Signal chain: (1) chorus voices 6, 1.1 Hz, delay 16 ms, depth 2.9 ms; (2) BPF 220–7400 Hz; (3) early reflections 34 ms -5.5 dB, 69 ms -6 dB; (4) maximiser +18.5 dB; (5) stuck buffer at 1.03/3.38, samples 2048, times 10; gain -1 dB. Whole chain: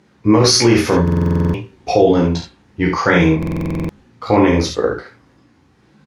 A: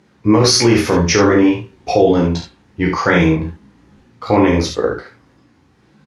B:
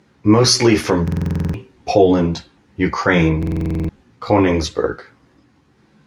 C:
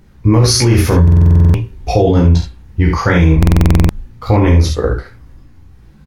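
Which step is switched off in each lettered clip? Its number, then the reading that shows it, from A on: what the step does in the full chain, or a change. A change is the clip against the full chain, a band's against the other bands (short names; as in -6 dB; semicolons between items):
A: 5, 125 Hz band -2.0 dB; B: 3, crest factor change +1.5 dB; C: 2, 125 Hz band +10.5 dB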